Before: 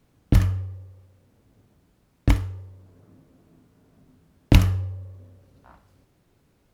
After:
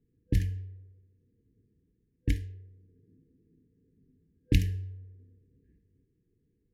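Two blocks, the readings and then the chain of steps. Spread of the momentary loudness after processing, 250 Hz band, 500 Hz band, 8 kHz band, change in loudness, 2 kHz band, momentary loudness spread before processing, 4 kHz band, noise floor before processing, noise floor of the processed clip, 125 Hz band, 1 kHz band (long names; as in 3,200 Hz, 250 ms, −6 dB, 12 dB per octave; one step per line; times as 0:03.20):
19 LU, −9.0 dB, −11.0 dB, −9.0 dB, −9.0 dB, −9.5 dB, 19 LU, −9.0 dB, −65 dBFS, −75 dBFS, −9.0 dB, below −35 dB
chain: brick-wall band-stop 500–1,600 Hz
low-pass that shuts in the quiet parts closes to 870 Hz, open at −15.5 dBFS
level −9 dB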